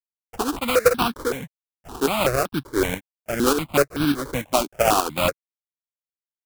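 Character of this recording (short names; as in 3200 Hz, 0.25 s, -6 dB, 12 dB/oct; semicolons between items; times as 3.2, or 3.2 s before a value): a quantiser's noise floor 10-bit, dither none; tremolo saw up 3.4 Hz, depth 55%; aliases and images of a low sample rate 1900 Hz, jitter 20%; notches that jump at a steady rate 5.3 Hz 470–2000 Hz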